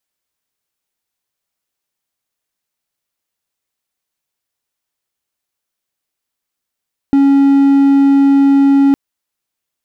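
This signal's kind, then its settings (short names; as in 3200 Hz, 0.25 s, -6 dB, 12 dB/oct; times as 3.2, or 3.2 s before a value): tone triangle 277 Hz -4 dBFS 1.81 s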